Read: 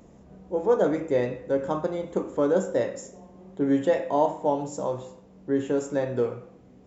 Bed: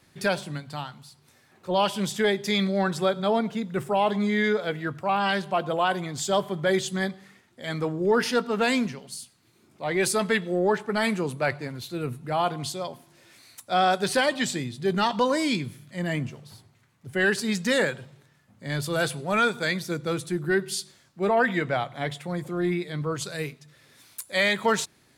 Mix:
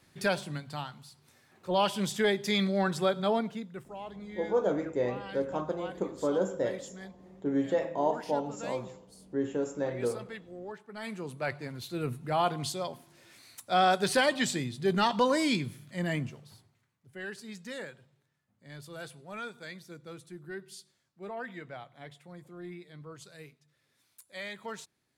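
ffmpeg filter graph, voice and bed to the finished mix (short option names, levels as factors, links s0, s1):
-filter_complex "[0:a]adelay=3850,volume=0.501[s0];[1:a]volume=4.73,afade=t=out:st=3.26:d=0.6:silence=0.158489,afade=t=in:st=10.91:d=1.16:silence=0.141254,afade=t=out:st=15.98:d=1.07:silence=0.177828[s1];[s0][s1]amix=inputs=2:normalize=0"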